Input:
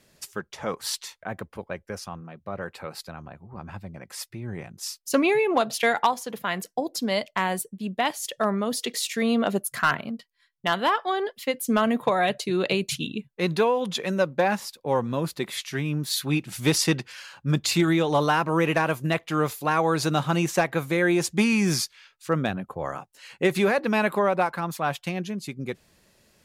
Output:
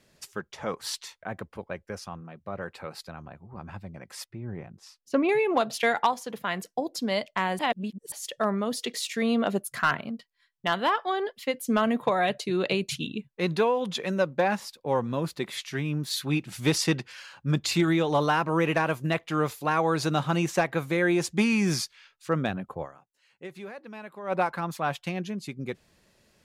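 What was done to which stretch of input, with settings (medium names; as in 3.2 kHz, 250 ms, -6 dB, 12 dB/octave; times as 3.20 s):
4.24–5.29 s: low-pass 1.2 kHz 6 dB/octave
7.59–8.12 s: reverse
22.82–24.32 s: dip -17 dB, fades 0.33 s exponential
whole clip: treble shelf 9.3 kHz -7.5 dB; trim -2 dB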